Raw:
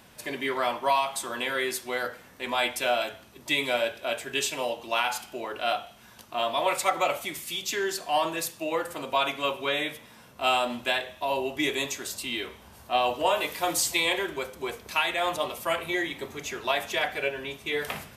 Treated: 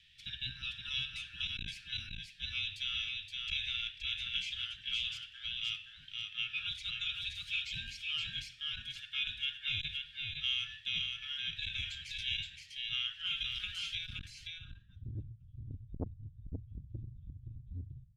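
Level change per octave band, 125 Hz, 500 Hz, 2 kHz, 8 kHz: +1.5 dB, below −30 dB, −10.5 dB, −22.0 dB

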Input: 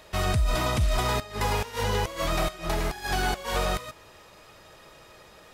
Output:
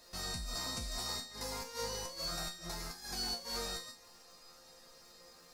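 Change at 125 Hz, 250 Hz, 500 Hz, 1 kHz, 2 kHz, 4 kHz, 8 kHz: −20.5, −15.0, −16.0, −17.0, −16.0, −5.0, −4.5 decibels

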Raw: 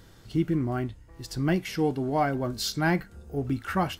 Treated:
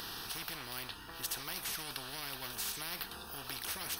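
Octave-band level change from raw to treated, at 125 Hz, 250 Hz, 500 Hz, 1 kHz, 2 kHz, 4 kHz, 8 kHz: −24.0, −25.5, −21.5, −15.0, −9.0, −2.0, +0.5 decibels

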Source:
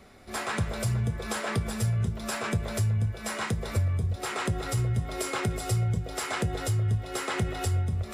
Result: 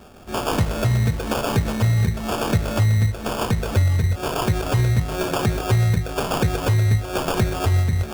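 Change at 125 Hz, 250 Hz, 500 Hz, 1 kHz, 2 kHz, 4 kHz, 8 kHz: +8.5, +9.0, +9.5, +8.5, +5.0, +7.0, +3.0 decibels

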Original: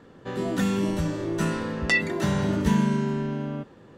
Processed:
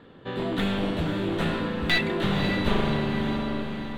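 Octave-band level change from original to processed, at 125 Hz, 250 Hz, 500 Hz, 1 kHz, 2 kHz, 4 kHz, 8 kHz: −2.0, −1.5, +0.5, +1.5, −0.5, +6.5, −10.0 decibels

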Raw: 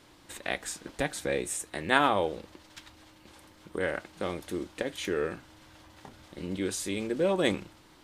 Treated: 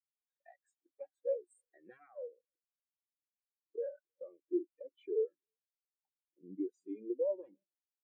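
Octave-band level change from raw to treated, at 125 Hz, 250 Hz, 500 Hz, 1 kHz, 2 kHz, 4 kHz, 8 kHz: below −25 dB, −10.5 dB, −7.0 dB, below −30 dB, below −35 dB, below −40 dB, below −35 dB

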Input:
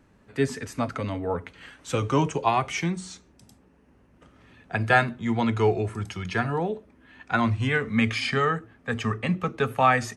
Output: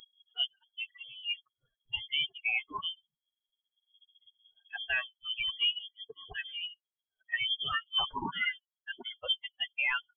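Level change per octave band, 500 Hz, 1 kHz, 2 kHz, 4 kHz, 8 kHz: −26.0 dB, −16.5 dB, −6.0 dB, +6.5 dB, below −40 dB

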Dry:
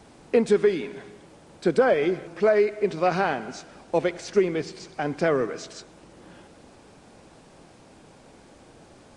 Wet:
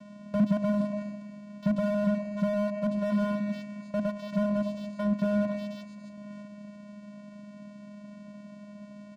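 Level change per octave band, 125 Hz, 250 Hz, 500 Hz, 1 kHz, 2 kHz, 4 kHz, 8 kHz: +2.5 dB, +2.5 dB, −9.5 dB, −11.5 dB, −11.5 dB, −10.0 dB, below −10 dB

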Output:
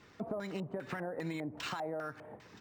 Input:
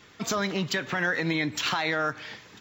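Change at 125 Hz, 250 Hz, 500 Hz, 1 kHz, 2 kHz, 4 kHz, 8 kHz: −10.0, −9.5, −7.5, −12.0, −18.0, −17.0, −20.0 decibels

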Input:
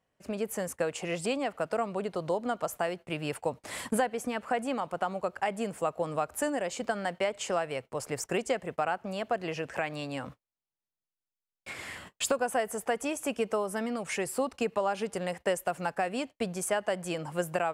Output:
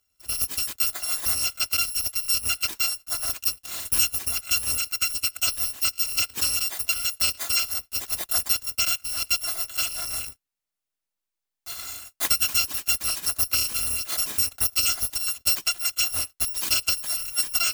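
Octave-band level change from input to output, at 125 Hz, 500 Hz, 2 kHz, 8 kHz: −2.5, −18.0, +5.0, +15.5 decibels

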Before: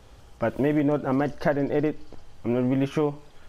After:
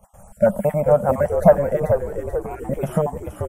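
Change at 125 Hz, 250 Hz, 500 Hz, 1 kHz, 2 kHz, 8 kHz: +5.5 dB, −2.0 dB, +9.0 dB, +8.0 dB, −0.5 dB, can't be measured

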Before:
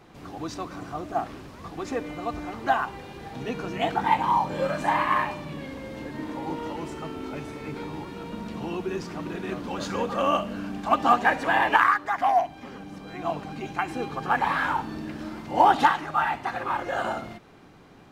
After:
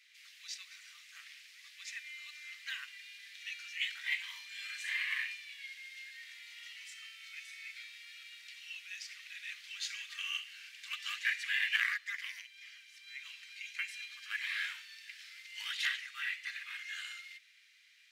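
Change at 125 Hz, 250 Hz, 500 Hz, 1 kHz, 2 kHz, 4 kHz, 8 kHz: below −40 dB, below −40 dB, below −40 dB, −35.0 dB, −7.0 dB, −0.5 dB, −2.0 dB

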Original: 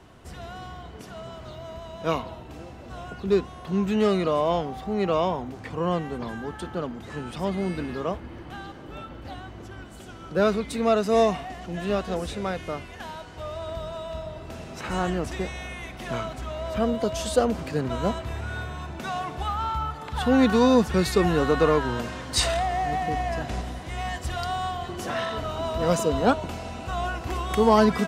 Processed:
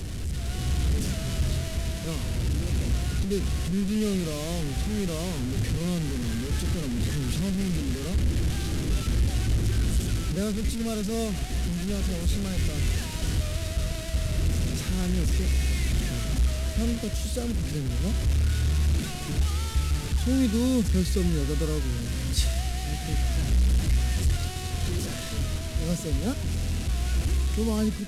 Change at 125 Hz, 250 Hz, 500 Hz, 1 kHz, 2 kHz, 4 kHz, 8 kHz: +7.5, −1.5, −10.0, −15.0, −5.0, 0.0, +4.5 decibels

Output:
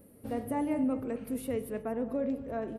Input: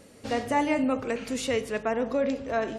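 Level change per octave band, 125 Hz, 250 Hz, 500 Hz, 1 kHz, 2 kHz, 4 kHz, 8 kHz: −2.5 dB, −2.5 dB, −7.0 dB, −10.0 dB, −15.5 dB, below −15 dB, −10.0 dB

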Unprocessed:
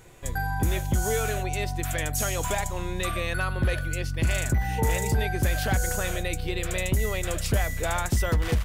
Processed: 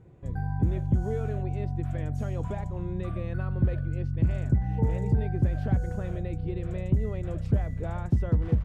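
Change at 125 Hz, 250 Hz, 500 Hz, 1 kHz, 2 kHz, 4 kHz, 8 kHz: +1.5 dB, +1.5 dB, −5.0 dB, −10.5 dB, −16.5 dB, below −20 dB, below −25 dB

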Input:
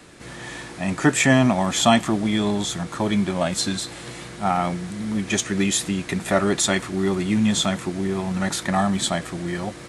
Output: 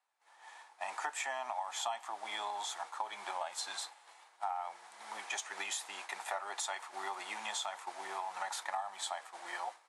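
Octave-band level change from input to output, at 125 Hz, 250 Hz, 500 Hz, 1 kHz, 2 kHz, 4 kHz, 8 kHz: below −40 dB, below −40 dB, −22.0 dB, −11.5 dB, −15.0 dB, −15.5 dB, −16.0 dB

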